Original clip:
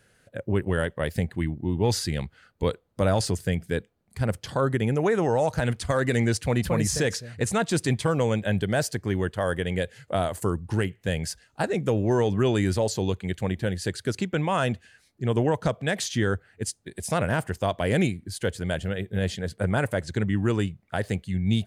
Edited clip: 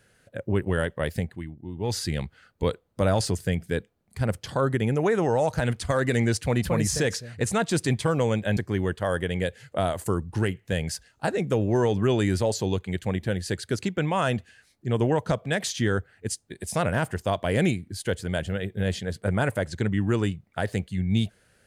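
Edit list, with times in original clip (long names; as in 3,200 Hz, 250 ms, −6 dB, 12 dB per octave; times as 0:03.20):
0:01.10–0:02.09: duck −10 dB, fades 0.34 s
0:08.57–0:08.93: remove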